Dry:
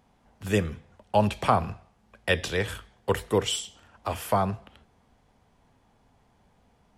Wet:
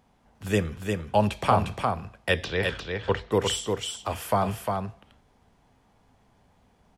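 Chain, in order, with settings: 2.44–3.32 s: low-pass 4.9 kHz 24 dB/octave; on a send: delay 353 ms -4.5 dB

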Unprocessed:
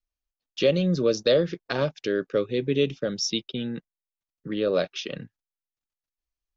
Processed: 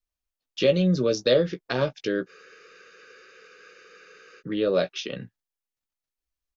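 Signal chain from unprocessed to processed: doubling 16 ms -8.5 dB; spectral freeze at 2.29 s, 2.10 s

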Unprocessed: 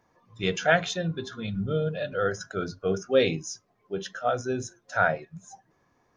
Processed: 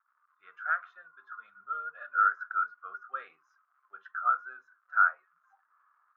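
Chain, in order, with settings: level rider gain up to 13.5 dB; crackle 220 per s -38 dBFS; Butterworth band-pass 1.3 kHz, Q 4.1; trim -3 dB

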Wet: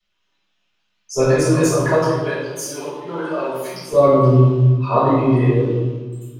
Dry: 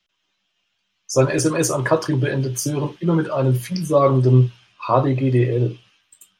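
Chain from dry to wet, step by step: 1.99–3.93 s: high-pass 530 Hz 12 dB/octave; reverberation RT60 1.4 s, pre-delay 3 ms, DRR -12 dB; trim -14 dB

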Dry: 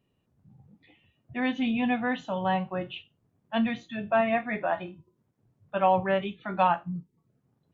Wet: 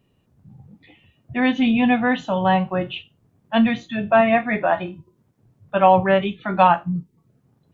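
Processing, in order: bass shelf 150 Hz +3 dB; trim +8.5 dB

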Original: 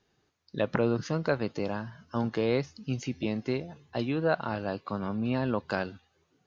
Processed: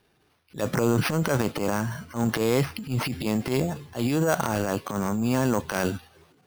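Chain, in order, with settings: transient shaper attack -11 dB, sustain +9 dB; in parallel at +1 dB: peak limiter -19 dBFS, peak gain reduction 7.5 dB; on the sum: sample-and-hold 6×

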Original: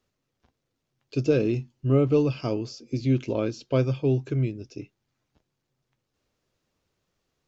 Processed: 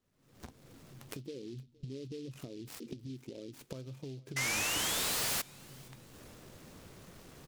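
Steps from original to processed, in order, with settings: 1.22–3.60 s: resonances exaggerated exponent 2; recorder AGC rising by 68 dB/s; peaking EQ 190 Hz +4.5 dB 1.4 oct; compression 3:1, threshold -41 dBFS, peak gain reduction 20.5 dB; 4.36–5.42 s: painted sound rise 2–5.4 kHz -26 dBFS; feedback delay 465 ms, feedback 40%, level -24 dB; delay time shaken by noise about 3.8 kHz, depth 0.067 ms; trim -7 dB

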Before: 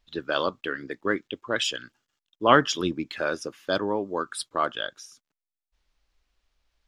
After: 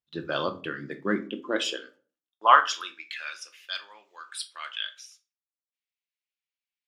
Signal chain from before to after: gate -51 dBFS, range -17 dB; simulated room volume 260 m³, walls furnished, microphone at 0.87 m; high-pass sweep 110 Hz -> 2.3 kHz, 0.75–3.23 s; trim -4 dB

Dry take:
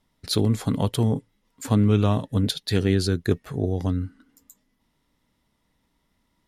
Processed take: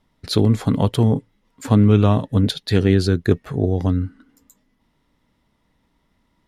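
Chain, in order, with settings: treble shelf 4.8 kHz -9.5 dB; trim +5.5 dB

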